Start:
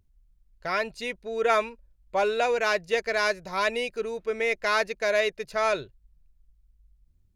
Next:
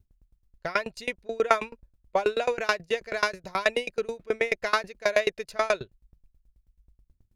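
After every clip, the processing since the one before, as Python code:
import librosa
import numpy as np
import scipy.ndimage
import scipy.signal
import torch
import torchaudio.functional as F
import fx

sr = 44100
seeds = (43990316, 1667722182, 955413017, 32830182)

y = fx.tremolo_decay(x, sr, direction='decaying', hz=9.3, depth_db=26)
y = y * 10.0 ** (6.5 / 20.0)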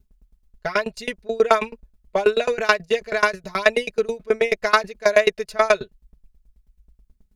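y = x + 0.89 * np.pad(x, (int(4.7 * sr / 1000.0), 0))[:len(x)]
y = y * 10.0 ** (3.0 / 20.0)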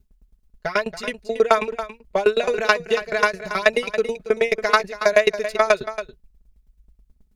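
y = x + 10.0 ** (-12.0 / 20.0) * np.pad(x, (int(279 * sr / 1000.0), 0))[:len(x)]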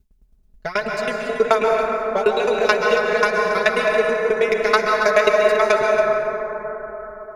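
y = fx.rev_plate(x, sr, seeds[0], rt60_s=4.4, hf_ratio=0.25, predelay_ms=115, drr_db=-1.0)
y = y * 10.0 ** (-1.0 / 20.0)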